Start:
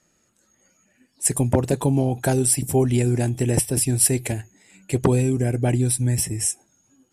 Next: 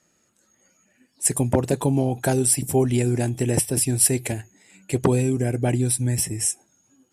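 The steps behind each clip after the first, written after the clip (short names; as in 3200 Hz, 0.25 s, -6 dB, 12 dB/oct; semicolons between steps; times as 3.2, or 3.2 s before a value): low shelf 65 Hz -9.5 dB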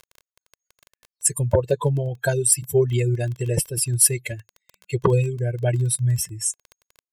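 per-bin expansion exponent 2; crackle 15/s -34 dBFS; comb 1.9 ms, depth 94%; gain +2 dB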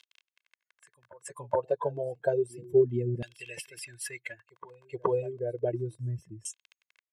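added harmonics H 5 -31 dB, 7 -45 dB, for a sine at -1.5 dBFS; reverse echo 0.423 s -20 dB; LFO band-pass saw down 0.31 Hz 220–3300 Hz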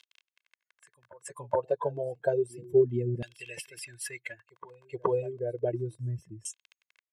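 nothing audible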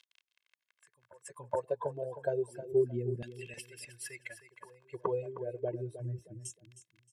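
feedback echo 0.312 s, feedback 26%, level -12.5 dB; gain -5.5 dB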